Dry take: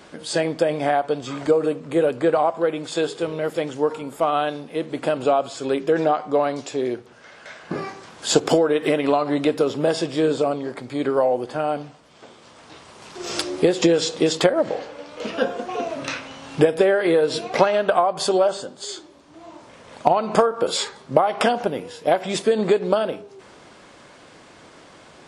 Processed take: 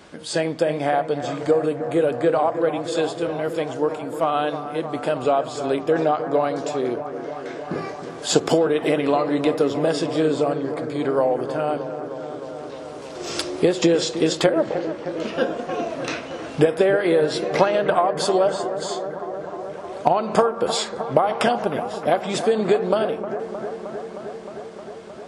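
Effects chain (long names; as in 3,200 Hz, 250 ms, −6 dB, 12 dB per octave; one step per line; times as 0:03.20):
high-pass filter 40 Hz
low-shelf EQ 77 Hz +8 dB
on a send: bucket-brigade delay 310 ms, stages 4,096, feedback 81%, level −11 dB
on the sum: level −1 dB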